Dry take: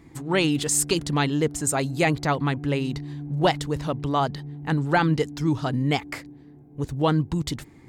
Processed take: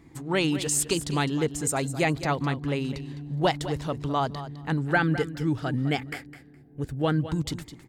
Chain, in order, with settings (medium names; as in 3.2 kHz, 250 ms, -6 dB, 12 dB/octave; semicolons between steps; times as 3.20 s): 4.81–7.31 s: graphic EQ with 31 bands 1 kHz -9 dB, 1.6 kHz +6 dB, 4 kHz -4 dB, 6.3 kHz -7 dB; feedback delay 208 ms, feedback 17%, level -13 dB; trim -3 dB